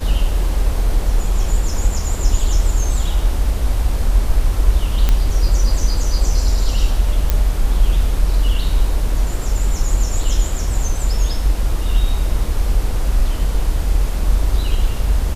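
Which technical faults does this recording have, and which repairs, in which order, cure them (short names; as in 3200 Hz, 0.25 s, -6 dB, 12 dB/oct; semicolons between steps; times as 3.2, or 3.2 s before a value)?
5.09 pop -3 dBFS
7.3 pop -3 dBFS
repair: de-click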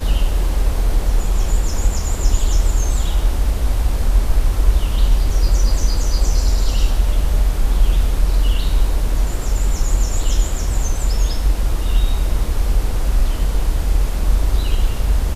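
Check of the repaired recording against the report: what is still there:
none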